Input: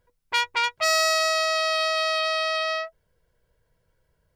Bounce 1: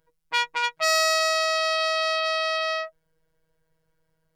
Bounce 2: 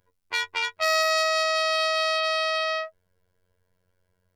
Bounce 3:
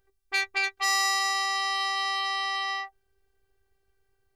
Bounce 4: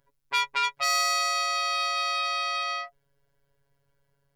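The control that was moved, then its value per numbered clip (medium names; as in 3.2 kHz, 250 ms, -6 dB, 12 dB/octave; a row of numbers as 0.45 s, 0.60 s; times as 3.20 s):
robot voice, frequency: 160 Hz, 91 Hz, 390 Hz, 140 Hz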